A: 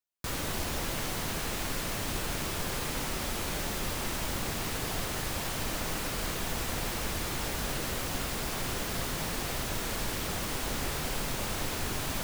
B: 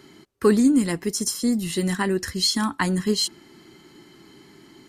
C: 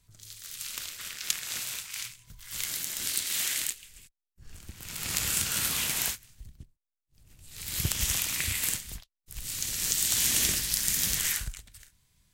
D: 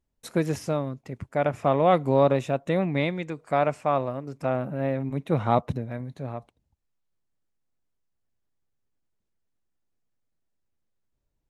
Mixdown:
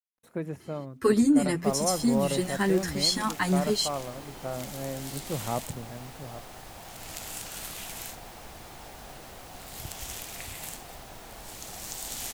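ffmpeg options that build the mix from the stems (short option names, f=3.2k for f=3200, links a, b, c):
-filter_complex "[0:a]equalizer=f=750:t=o:w=0.58:g=9.5,adelay=1400,volume=-13dB[a];[1:a]asplit=2[b][c];[c]adelay=8.6,afreqshift=-2.3[d];[b][d]amix=inputs=2:normalize=1,adelay=600,volume=-0.5dB[e];[2:a]adelay=2000,volume=-11dB[f];[3:a]deesser=0.95,equalizer=f=5.2k:t=o:w=1.5:g=-11.5,acrusher=bits=10:mix=0:aa=0.000001,volume=-8.5dB[g];[a][e][f][g]amix=inputs=4:normalize=0,bandreject=f=86.55:t=h:w=4,bandreject=f=173.1:t=h:w=4,bandreject=f=259.65:t=h:w=4"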